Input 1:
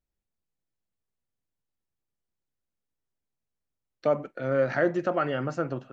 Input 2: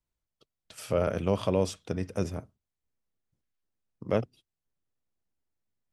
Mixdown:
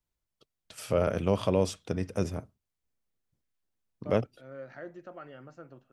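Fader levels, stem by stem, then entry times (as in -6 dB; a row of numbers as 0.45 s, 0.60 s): -19.0 dB, +0.5 dB; 0.00 s, 0.00 s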